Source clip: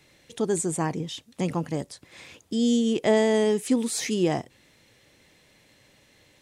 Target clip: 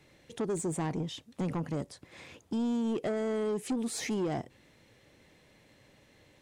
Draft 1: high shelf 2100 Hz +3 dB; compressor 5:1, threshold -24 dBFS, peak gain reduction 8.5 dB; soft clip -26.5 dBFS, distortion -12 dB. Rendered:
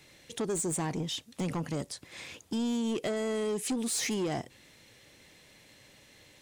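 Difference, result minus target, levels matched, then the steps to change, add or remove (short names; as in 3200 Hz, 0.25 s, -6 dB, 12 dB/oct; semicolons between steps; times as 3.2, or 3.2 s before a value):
4000 Hz band +6.0 dB
change: high shelf 2100 Hz -8 dB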